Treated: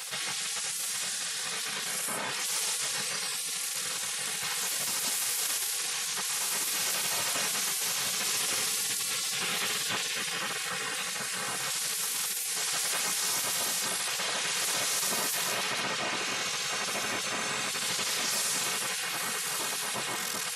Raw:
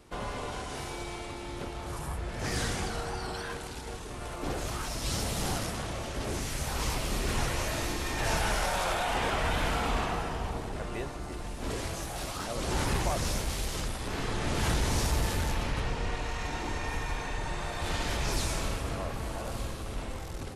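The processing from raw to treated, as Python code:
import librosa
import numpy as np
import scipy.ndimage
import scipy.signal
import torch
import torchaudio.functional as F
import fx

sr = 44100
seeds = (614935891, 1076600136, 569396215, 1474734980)

p1 = fx.low_shelf(x, sr, hz=200.0, db=5.0)
p2 = p1 + 0.96 * np.pad(p1, (int(3.2 * sr / 1000.0), 0))[:len(p1)]
p3 = p2 + fx.echo_wet_bandpass(p2, sr, ms=728, feedback_pct=60, hz=640.0, wet_db=-7, dry=0)
p4 = fx.spec_gate(p3, sr, threshold_db=-25, keep='weak')
p5 = scipy.signal.sosfilt(scipy.signal.butter(2, 97.0, 'highpass', fs=sr, output='sos'), p4)
p6 = fx.high_shelf(p5, sr, hz=5200.0, db=6.5)
y = fx.env_flatten(p6, sr, amount_pct=70)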